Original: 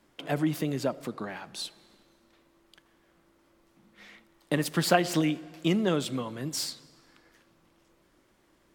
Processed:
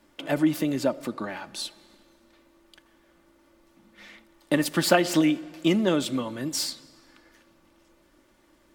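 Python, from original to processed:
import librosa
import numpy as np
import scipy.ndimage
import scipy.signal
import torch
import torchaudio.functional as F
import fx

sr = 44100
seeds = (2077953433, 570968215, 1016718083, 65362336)

y = x + 0.42 * np.pad(x, (int(3.4 * sr / 1000.0), 0))[:len(x)]
y = y * 10.0 ** (3.0 / 20.0)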